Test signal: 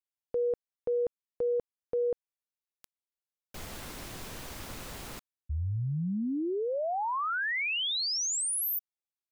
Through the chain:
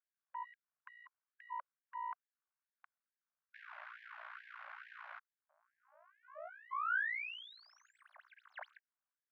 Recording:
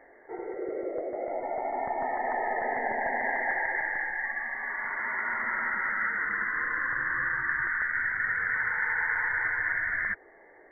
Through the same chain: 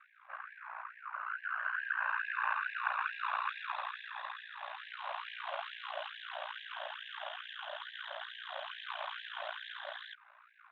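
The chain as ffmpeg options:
ffmpeg -i in.wav -filter_complex "[0:a]equalizer=frequency=470:width_type=o:width=1.4:gain=-11.5,acrossover=split=430[link_01][link_02];[link_01]acompressor=threshold=-51dB:ratio=12:attack=0.28:release=139:knee=1:detection=rms[link_03];[link_03][link_02]amix=inputs=2:normalize=0,aeval=exprs='abs(val(0))':channel_layout=same,aeval=exprs='val(0)*sin(2*PI*29*n/s)':channel_layout=same,highpass=frequency=330:width=0.5412,highpass=frequency=330:width=1.3066,equalizer=frequency=430:width_type=q:width=4:gain=-6,equalizer=frequency=620:width_type=q:width=4:gain=3,equalizer=frequency=1100:width_type=q:width=4:gain=7,equalizer=frequency=1500:width_type=q:width=4:gain=8,lowpass=frequency=2100:width=0.5412,lowpass=frequency=2100:width=1.3066,afftfilt=real='re*gte(b*sr/1024,530*pow(1600/530,0.5+0.5*sin(2*PI*2.3*pts/sr)))':imag='im*gte(b*sr/1024,530*pow(1600/530,0.5+0.5*sin(2*PI*2.3*pts/sr)))':win_size=1024:overlap=0.75,volume=6dB" out.wav

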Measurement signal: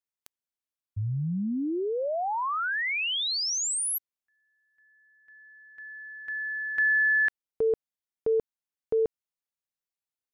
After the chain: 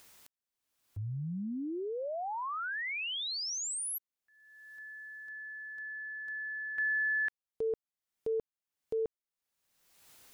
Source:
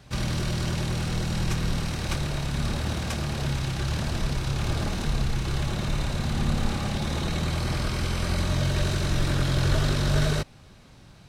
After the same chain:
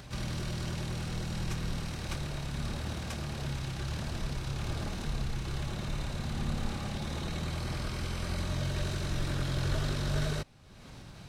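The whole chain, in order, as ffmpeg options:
ffmpeg -i in.wav -af "acompressor=mode=upward:threshold=-28dB:ratio=4:attack=0.16:release=549:knee=2.83:detection=peak,volume=-8dB" out.wav

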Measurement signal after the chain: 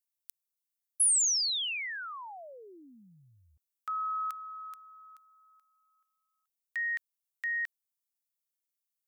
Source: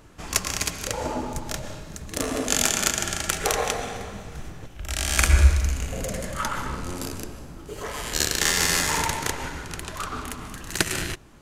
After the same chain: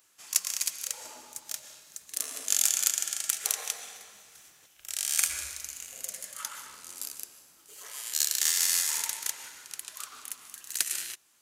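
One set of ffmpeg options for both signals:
ffmpeg -i in.wav -af "aderivative,volume=-1dB" out.wav

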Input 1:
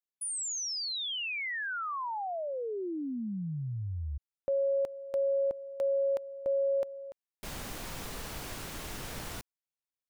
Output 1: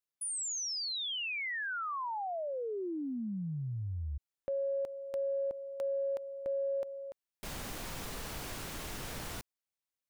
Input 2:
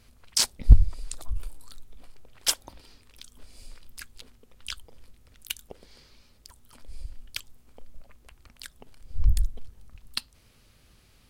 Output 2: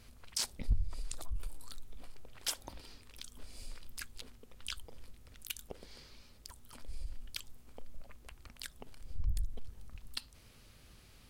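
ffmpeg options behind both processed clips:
ffmpeg -i in.wav -af "acompressor=threshold=-34dB:ratio=2.5:attack=1.6:release=47:knee=6:detection=rms" out.wav

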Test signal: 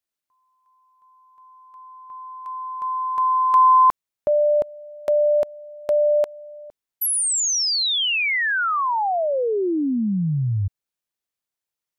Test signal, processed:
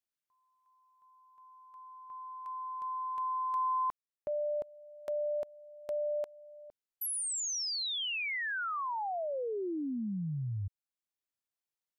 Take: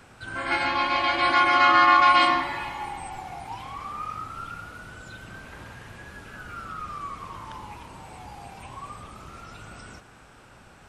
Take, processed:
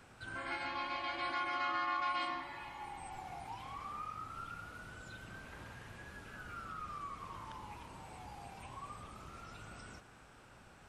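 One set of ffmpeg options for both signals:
ffmpeg -i in.wav -af "acompressor=threshold=-30dB:ratio=2:attack=0.51:release=845:detection=rms,volume=-8dB" out.wav

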